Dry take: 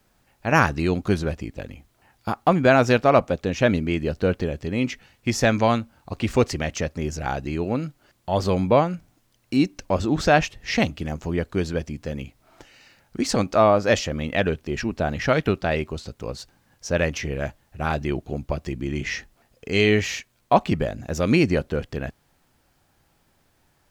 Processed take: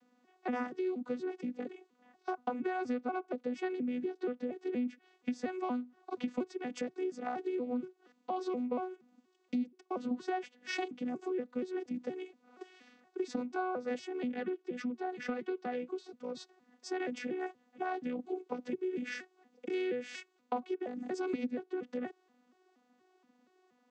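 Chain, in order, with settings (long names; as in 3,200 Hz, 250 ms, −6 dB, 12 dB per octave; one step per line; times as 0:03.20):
vocoder with an arpeggio as carrier bare fifth, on B3, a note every 237 ms
0:14.34–0:16.35: flanger 1.7 Hz, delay 4.1 ms, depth 2.2 ms, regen +62%
downward compressor 6 to 1, threshold −32 dBFS, peak gain reduction 22 dB
level −1.5 dB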